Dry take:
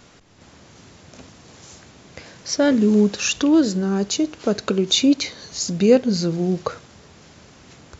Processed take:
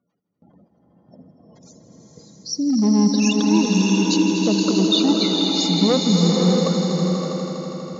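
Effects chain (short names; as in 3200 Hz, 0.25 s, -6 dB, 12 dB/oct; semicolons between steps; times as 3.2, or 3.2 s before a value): spectral gate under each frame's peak -10 dB strong; gate with hold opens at -40 dBFS; spectral gain 1.69–2.95, 500–3300 Hz -27 dB; hard clip -14.5 dBFS, distortion -12 dB; speaker cabinet 170–6500 Hz, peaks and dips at 180 Hz +7 dB, 370 Hz -5 dB, 1500 Hz -8 dB, 2400 Hz -4 dB, 4300 Hz +5 dB; swelling echo 81 ms, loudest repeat 5, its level -10.5 dB; bloom reverb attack 0.63 s, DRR 1 dB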